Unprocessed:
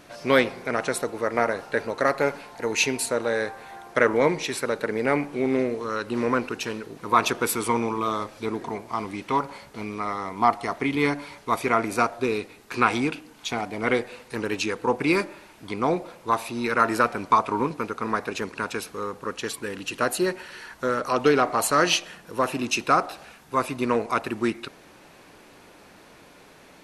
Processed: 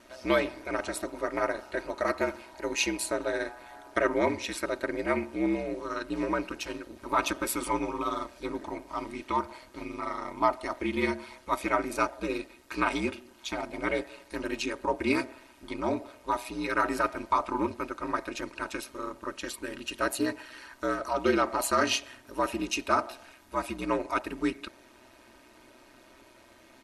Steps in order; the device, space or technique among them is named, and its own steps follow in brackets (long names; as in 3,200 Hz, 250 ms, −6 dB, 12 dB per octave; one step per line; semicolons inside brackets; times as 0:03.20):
ring-modulated robot voice (ring modulation 64 Hz; comb filter 3.2 ms, depth 64%)
level −4 dB